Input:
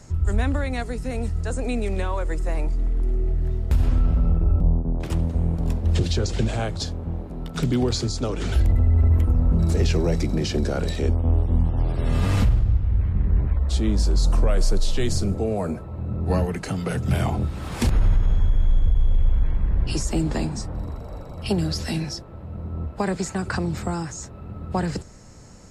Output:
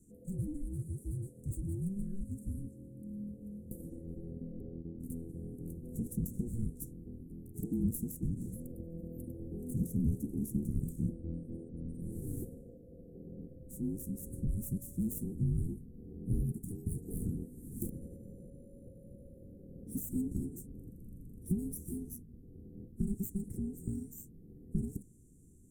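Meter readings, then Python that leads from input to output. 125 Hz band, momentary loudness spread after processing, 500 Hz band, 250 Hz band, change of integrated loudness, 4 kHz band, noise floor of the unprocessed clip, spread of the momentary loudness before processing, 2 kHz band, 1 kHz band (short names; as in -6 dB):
-16.5 dB, 16 LU, -20.5 dB, -10.5 dB, -15.5 dB, under -40 dB, -38 dBFS, 9 LU, under -40 dB, under -40 dB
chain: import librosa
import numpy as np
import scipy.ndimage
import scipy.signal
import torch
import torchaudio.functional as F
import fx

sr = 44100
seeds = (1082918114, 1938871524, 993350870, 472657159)

y = fx.tracing_dist(x, sr, depth_ms=0.048)
y = y * np.sin(2.0 * np.pi * 580.0 * np.arange(len(y)) / sr)
y = scipy.signal.sosfilt(scipy.signal.cheby2(4, 50, [580.0, 4800.0], 'bandstop', fs=sr, output='sos'), y)
y = y * librosa.db_to_amplitude(1.5)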